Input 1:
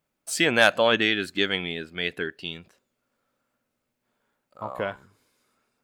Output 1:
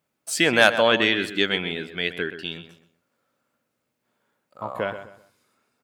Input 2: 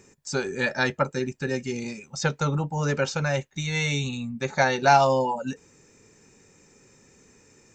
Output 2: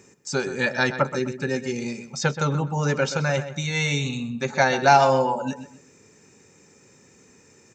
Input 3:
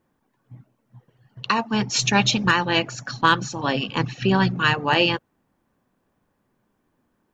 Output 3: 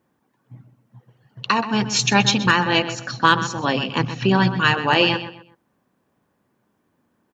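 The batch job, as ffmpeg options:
-filter_complex "[0:a]highpass=82,asplit=2[a][b];[b]adelay=127,lowpass=f=3.3k:p=1,volume=-11dB,asplit=2[c][d];[d]adelay=127,lowpass=f=3.3k:p=1,volume=0.32,asplit=2[e][f];[f]adelay=127,lowpass=f=3.3k:p=1,volume=0.32[g];[c][e][g]amix=inputs=3:normalize=0[h];[a][h]amix=inputs=2:normalize=0,volume=2dB"

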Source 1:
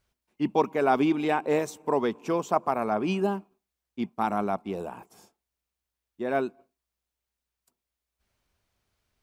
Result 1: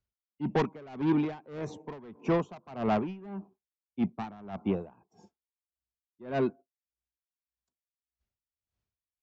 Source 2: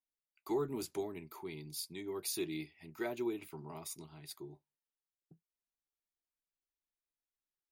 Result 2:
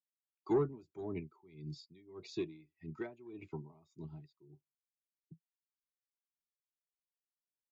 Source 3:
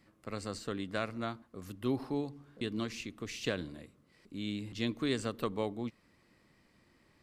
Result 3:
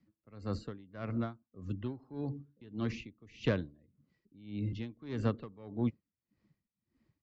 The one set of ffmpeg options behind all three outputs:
-filter_complex "[0:a]afftdn=nr=18:nf=-52,equalizer=f=80:w=0.38:g=8.5,acrossover=split=3200[a][b];[b]acompressor=threshold=-59dB:ratio=4:attack=1:release=60[c];[a][c]amix=inputs=2:normalize=0,acrossover=split=180|4700[d][e][f];[e]asoftclip=type=tanh:threshold=-25.5dB[g];[d][g][f]amix=inputs=3:normalize=0,aresample=16000,aresample=44100,aeval=exprs='val(0)*pow(10,-24*(0.5-0.5*cos(2*PI*1.7*n/s))/20)':c=same,volume=3.5dB"

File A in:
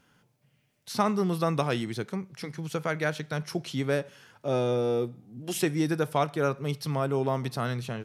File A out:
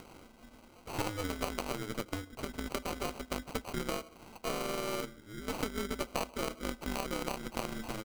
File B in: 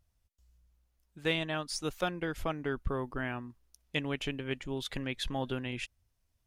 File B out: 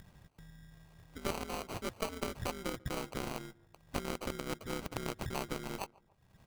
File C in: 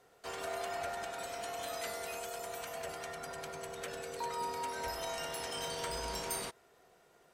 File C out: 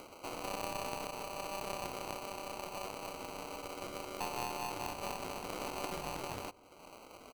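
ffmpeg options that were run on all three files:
-filter_complex "[0:a]aeval=exprs='val(0)*sin(2*PI*100*n/s)':c=same,highshelf=f=4.5k:g=-4,acrusher=samples=25:mix=1:aa=0.000001,lowshelf=f=370:g=-6,acompressor=threshold=-37dB:ratio=6,asplit=2[a][b];[b]adelay=142,lowpass=f=1.3k:p=1,volume=-22.5dB,asplit=2[c][d];[d]adelay=142,lowpass=f=1.3k:p=1,volume=0.25[e];[c][e]amix=inputs=2:normalize=0[f];[a][f]amix=inputs=2:normalize=0,aeval=exprs='0.0944*(cos(1*acos(clip(val(0)/0.0944,-1,1)))-cos(1*PI/2))+0.00841*(cos(3*acos(clip(val(0)/0.0944,-1,1)))-cos(3*PI/2))+0.00944*(cos(6*acos(clip(val(0)/0.0944,-1,1)))-cos(6*PI/2))':c=same,acompressor=mode=upward:threshold=-46dB:ratio=2.5,volume=6.5dB"

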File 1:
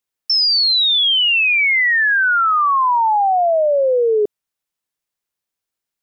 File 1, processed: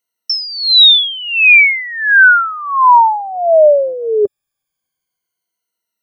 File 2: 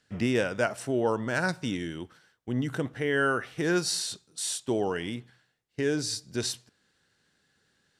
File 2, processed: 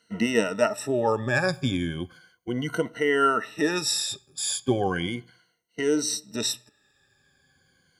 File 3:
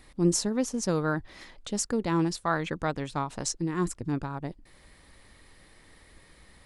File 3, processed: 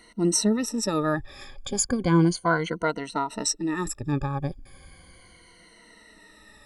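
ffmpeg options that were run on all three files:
-af "afftfilt=real='re*pow(10,21/40*sin(2*PI*(1.9*log(max(b,1)*sr/1024/100)/log(2)-(-0.35)*(pts-256)/sr)))':imag='im*pow(10,21/40*sin(2*PI*(1.9*log(max(b,1)*sr/1024/100)/log(2)-(-0.35)*(pts-256)/sr)))':win_size=1024:overlap=0.75"

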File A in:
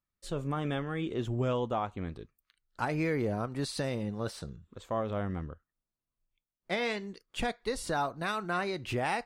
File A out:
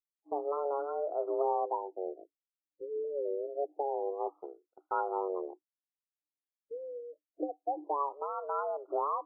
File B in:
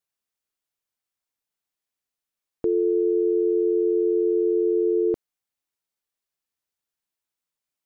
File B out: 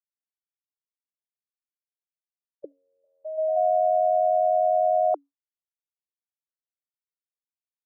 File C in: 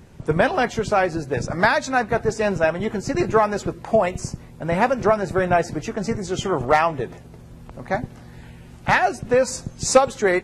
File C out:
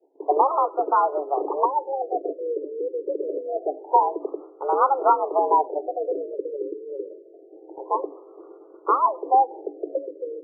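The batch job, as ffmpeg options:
-af "afreqshift=280,agate=range=-33dB:threshold=-36dB:ratio=3:detection=peak,afftfilt=real='re*lt(b*sr/1024,550*pow(1500/550,0.5+0.5*sin(2*PI*0.26*pts/sr)))':imag='im*lt(b*sr/1024,550*pow(1500/550,0.5+0.5*sin(2*PI*0.26*pts/sr)))':win_size=1024:overlap=0.75"

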